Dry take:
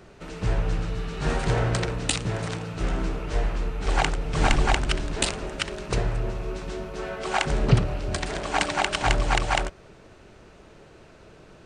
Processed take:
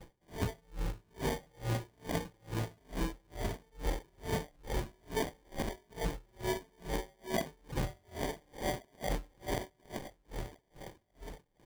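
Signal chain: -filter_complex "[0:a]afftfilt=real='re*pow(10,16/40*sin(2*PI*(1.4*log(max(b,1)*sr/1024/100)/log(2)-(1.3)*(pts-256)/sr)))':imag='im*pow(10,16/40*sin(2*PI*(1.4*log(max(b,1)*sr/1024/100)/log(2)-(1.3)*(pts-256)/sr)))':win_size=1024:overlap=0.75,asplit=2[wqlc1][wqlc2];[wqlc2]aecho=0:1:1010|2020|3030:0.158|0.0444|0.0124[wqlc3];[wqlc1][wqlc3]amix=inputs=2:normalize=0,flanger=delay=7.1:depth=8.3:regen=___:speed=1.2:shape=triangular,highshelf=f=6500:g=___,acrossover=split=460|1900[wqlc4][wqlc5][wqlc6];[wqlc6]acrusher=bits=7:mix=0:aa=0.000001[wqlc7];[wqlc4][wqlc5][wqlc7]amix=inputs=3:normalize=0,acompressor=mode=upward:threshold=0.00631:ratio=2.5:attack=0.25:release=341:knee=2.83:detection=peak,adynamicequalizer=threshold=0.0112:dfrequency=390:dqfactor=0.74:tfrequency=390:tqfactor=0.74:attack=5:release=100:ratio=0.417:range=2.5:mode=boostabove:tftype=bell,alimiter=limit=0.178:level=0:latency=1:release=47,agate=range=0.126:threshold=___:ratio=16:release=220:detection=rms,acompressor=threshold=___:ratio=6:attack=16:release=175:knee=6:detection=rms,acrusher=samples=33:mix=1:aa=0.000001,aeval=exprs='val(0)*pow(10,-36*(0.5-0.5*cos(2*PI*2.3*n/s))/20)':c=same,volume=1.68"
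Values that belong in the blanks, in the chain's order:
-69, -2, 0.00141, 0.0224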